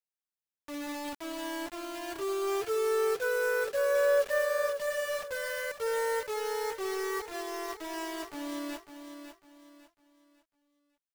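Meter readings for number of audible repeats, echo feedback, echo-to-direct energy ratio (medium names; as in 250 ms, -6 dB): 3, 33%, -8.5 dB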